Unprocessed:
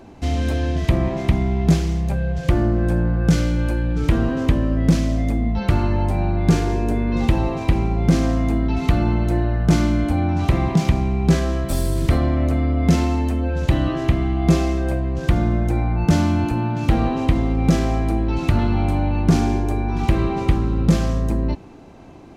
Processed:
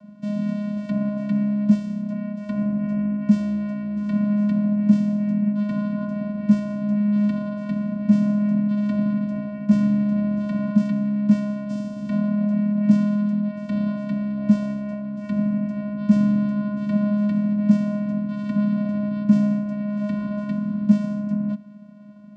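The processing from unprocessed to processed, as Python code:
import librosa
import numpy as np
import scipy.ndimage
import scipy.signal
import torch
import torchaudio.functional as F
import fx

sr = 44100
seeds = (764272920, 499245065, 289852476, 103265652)

y = fx.vocoder(x, sr, bands=8, carrier='square', carrier_hz=207.0)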